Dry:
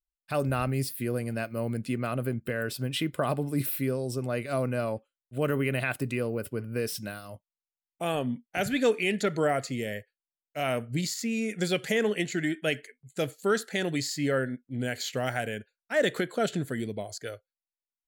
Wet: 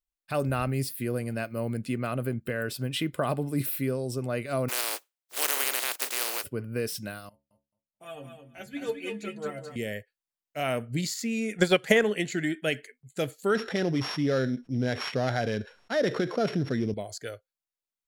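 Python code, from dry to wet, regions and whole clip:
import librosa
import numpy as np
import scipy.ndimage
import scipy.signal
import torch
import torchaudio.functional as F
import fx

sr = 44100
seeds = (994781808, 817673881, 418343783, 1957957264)

y = fx.spec_flatten(x, sr, power=0.17, at=(4.68, 6.43), fade=0.02)
y = fx.highpass(y, sr, hz=350.0, slope=24, at=(4.68, 6.43), fade=0.02)
y = fx.chain(y, sr, fx.stiff_resonator(f0_hz=67.0, decay_s=0.33, stiffness=0.008),
    fx.echo_feedback(ms=216, feedback_pct=16, wet_db=-5.5),
    fx.upward_expand(threshold_db=-42.0, expansion=1.5), at=(7.29, 9.76))
y = fx.chain(y, sr, fx.transient(attack_db=7, sustain_db=-7),
    fx.peak_eq(hz=1000.0, db=7.0, octaves=1.8), at=(11.57, 12.03))
y = fx.chain(y, sr, fx.sample_sort(block=8),
    fx.spacing_loss(db_at_10k=23),
    fx.env_flatten(amount_pct=50), at=(13.55, 16.94))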